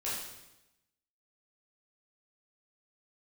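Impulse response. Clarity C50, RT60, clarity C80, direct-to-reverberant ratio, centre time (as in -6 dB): 0.5 dB, 0.95 s, 3.5 dB, -9.0 dB, 67 ms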